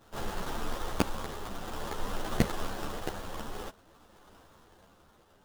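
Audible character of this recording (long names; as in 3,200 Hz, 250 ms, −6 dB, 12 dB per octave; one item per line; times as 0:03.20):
aliases and images of a low sample rate 2,300 Hz, jitter 20%
tremolo triangle 0.52 Hz, depth 50%
a quantiser's noise floor 12 bits, dither none
a shimmering, thickened sound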